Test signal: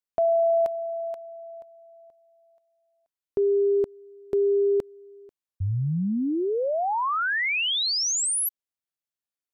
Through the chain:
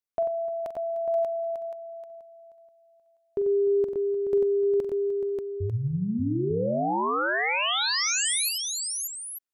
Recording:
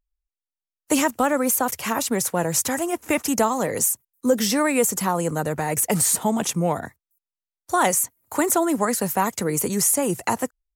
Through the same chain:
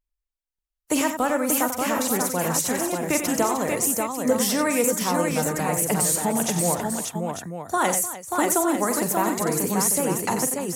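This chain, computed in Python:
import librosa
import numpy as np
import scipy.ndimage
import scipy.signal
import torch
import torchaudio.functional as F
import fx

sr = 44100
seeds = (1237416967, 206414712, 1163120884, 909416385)

y = fx.echo_multitap(x, sr, ms=(44, 92, 302, 586, 896), db=(-11.0, -8.5, -15.5, -4.0, -9.0))
y = F.gain(torch.from_numpy(y), -3.0).numpy()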